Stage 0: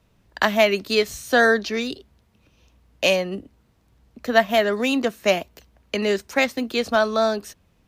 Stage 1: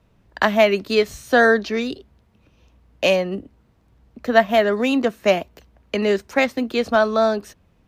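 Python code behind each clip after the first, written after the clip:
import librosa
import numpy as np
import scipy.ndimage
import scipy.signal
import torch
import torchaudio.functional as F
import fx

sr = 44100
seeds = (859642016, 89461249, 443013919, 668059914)

y = fx.high_shelf(x, sr, hz=3000.0, db=-8.5)
y = F.gain(torch.from_numpy(y), 3.0).numpy()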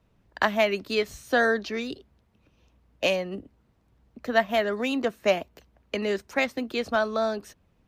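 y = fx.hpss(x, sr, part='percussive', gain_db=4)
y = F.gain(torch.from_numpy(y), -8.5).numpy()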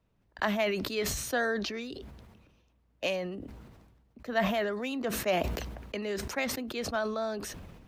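y = fx.sustainer(x, sr, db_per_s=38.0)
y = F.gain(torch.from_numpy(y), -7.5).numpy()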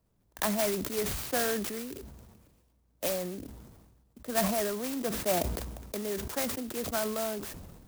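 y = fx.clock_jitter(x, sr, seeds[0], jitter_ms=0.11)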